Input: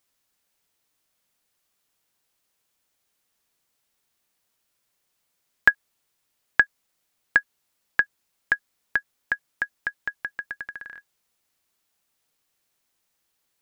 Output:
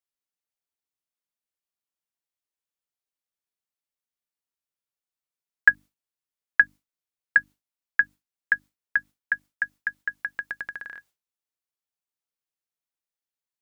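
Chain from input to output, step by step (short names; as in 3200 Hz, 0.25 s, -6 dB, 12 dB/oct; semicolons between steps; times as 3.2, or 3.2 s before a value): notches 50/100/150/200/250/300 Hz; gate with hold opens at -50 dBFS; gain +1.5 dB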